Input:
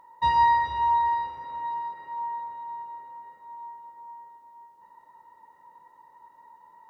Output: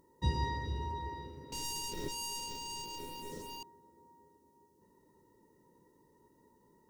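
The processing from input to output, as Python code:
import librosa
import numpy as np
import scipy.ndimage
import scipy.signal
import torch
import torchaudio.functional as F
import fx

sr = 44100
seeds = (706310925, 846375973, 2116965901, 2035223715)

y = fx.leveller(x, sr, passes=5, at=(1.52, 3.63))
y = fx.curve_eq(y, sr, hz=(410.0, 800.0, 3200.0, 5700.0), db=(0, -29, -17, -6))
y = F.gain(torch.from_numpy(y), 7.5).numpy()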